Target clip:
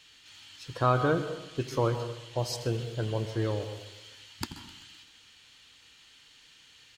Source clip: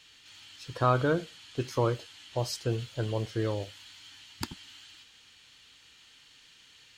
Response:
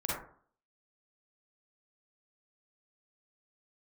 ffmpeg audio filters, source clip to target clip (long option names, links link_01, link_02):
-filter_complex "[0:a]aecho=1:1:129|258|387|516|645:0.126|0.0692|0.0381|0.0209|0.0115,asplit=2[link_01][link_02];[1:a]atrim=start_sample=2205,asetrate=34839,aresample=44100,adelay=85[link_03];[link_02][link_03]afir=irnorm=-1:irlink=0,volume=-18.5dB[link_04];[link_01][link_04]amix=inputs=2:normalize=0"